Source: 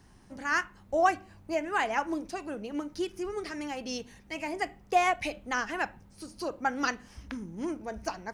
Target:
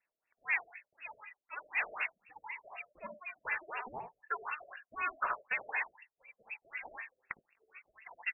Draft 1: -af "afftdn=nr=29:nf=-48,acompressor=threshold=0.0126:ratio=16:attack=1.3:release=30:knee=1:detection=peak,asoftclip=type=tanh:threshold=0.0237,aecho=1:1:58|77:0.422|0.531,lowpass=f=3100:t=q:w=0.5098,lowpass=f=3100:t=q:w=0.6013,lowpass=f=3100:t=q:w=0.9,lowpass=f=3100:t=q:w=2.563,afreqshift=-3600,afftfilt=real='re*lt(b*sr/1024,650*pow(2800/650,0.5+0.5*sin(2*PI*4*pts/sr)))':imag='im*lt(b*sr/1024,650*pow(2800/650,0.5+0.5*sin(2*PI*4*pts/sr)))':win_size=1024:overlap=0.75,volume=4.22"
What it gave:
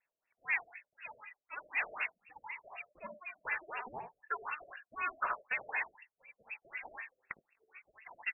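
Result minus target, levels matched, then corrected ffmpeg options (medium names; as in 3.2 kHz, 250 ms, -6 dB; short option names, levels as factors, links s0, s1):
saturation: distortion +15 dB
-af "afftdn=nr=29:nf=-48,acompressor=threshold=0.0126:ratio=16:attack=1.3:release=30:knee=1:detection=peak,asoftclip=type=tanh:threshold=0.0596,aecho=1:1:58|77:0.422|0.531,lowpass=f=3100:t=q:w=0.5098,lowpass=f=3100:t=q:w=0.6013,lowpass=f=3100:t=q:w=0.9,lowpass=f=3100:t=q:w=2.563,afreqshift=-3600,afftfilt=real='re*lt(b*sr/1024,650*pow(2800/650,0.5+0.5*sin(2*PI*4*pts/sr)))':imag='im*lt(b*sr/1024,650*pow(2800/650,0.5+0.5*sin(2*PI*4*pts/sr)))':win_size=1024:overlap=0.75,volume=4.22"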